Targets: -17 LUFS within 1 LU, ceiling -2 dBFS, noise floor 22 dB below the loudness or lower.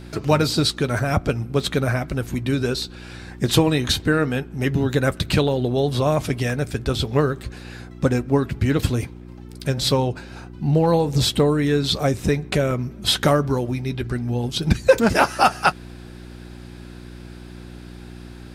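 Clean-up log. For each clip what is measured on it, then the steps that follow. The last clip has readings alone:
dropouts 3; longest dropout 1.2 ms; hum 60 Hz; highest harmonic 360 Hz; hum level -36 dBFS; loudness -21.0 LUFS; peak level -1.5 dBFS; loudness target -17.0 LUFS
-> interpolate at 1.60/6.50/12.71 s, 1.2 ms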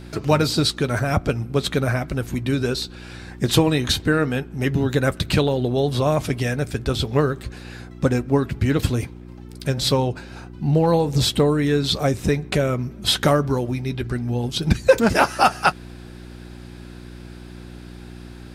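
dropouts 0; hum 60 Hz; highest harmonic 360 Hz; hum level -35 dBFS
-> de-hum 60 Hz, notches 6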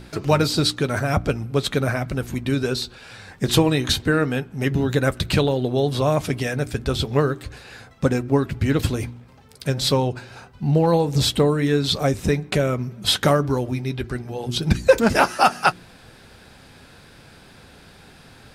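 hum not found; loudness -21.5 LUFS; peak level -1.5 dBFS; loudness target -17.0 LUFS
-> trim +4.5 dB; peak limiter -2 dBFS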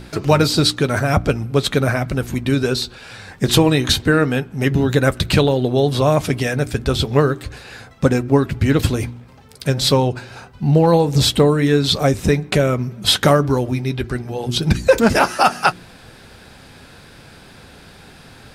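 loudness -17.0 LUFS; peak level -2.0 dBFS; noise floor -44 dBFS

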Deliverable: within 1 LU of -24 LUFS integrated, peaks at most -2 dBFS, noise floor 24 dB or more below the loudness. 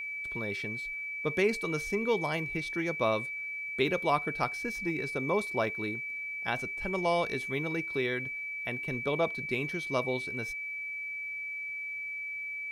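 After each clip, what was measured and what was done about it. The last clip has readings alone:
steady tone 2.3 kHz; tone level -35 dBFS; loudness -32.0 LUFS; peak level -13.5 dBFS; loudness target -24.0 LUFS
-> band-stop 2.3 kHz, Q 30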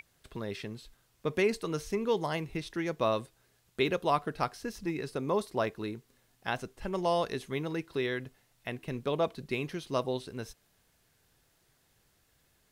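steady tone not found; loudness -33.5 LUFS; peak level -14.0 dBFS; loudness target -24.0 LUFS
-> trim +9.5 dB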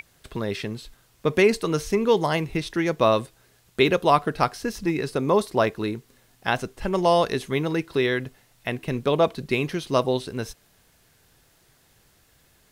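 loudness -24.0 LUFS; peak level -4.5 dBFS; noise floor -61 dBFS

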